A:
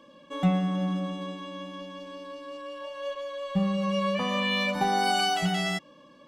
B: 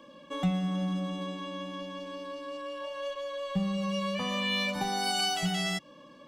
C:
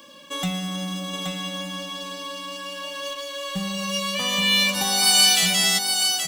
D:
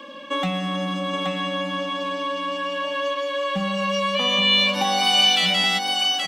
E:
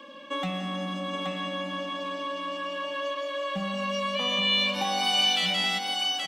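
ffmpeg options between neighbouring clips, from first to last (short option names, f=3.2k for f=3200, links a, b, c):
-filter_complex "[0:a]acrossover=split=140|3000[a][b][c];[b]acompressor=threshold=-36dB:ratio=2.5[d];[a][d][c]amix=inputs=3:normalize=0,volume=1.5dB"
-af "aecho=1:1:825:0.531,crystalizer=i=8.5:c=0,acrusher=bits=6:mode=log:mix=0:aa=0.000001"
-filter_complex "[0:a]acrossover=split=170 3900:gain=0.224 1 0.0708[a][b][c];[a][b][c]amix=inputs=3:normalize=0,aecho=1:1:3.7:0.51,asplit=2[d][e];[e]acompressor=threshold=-30dB:ratio=6,volume=2dB[f];[d][f]amix=inputs=2:normalize=0"
-filter_complex "[0:a]asplit=4[a][b][c][d];[b]adelay=171,afreqshift=49,volume=-16.5dB[e];[c]adelay=342,afreqshift=98,volume=-26.4dB[f];[d]adelay=513,afreqshift=147,volume=-36.3dB[g];[a][e][f][g]amix=inputs=4:normalize=0,volume=-6.5dB"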